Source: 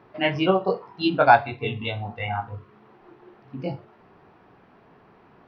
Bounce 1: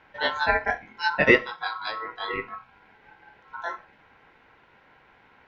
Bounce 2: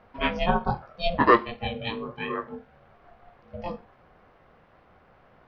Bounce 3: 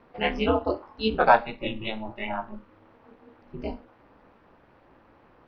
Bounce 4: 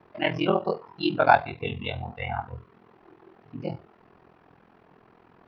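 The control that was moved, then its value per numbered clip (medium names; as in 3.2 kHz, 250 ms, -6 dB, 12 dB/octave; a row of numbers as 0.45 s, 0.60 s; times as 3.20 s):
ring modulator, frequency: 1.2 kHz, 350 Hz, 110 Hz, 21 Hz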